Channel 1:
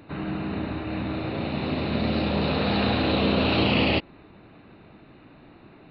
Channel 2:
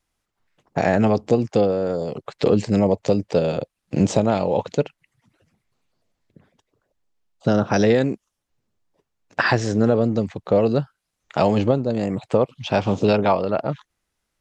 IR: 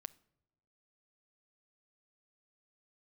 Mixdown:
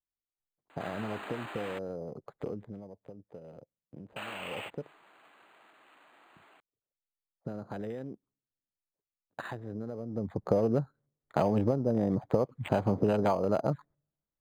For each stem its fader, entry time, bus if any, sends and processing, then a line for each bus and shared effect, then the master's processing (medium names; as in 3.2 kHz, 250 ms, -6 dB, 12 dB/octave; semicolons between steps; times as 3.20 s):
+2.0 dB, 0.70 s, muted 1.79–4.16 s, no send, high-pass 1.1 kHz 12 dB/octave; compression 12:1, threshold -35 dBFS, peak gain reduction 12.5 dB
2.49 s -12.5 dB -> 2.88 s -23 dB -> 4.30 s -23 dB -> 4.58 s -14 dB -> 10.07 s -14 dB -> 10.32 s -2 dB, 0.00 s, send -21.5 dB, local Wiener filter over 15 samples; gate -51 dBFS, range -14 dB; compression, threshold -21 dBFS, peak gain reduction 9.5 dB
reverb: on, pre-delay 7 ms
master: treble shelf 4.8 kHz -8 dB; decimation joined by straight lines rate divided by 8×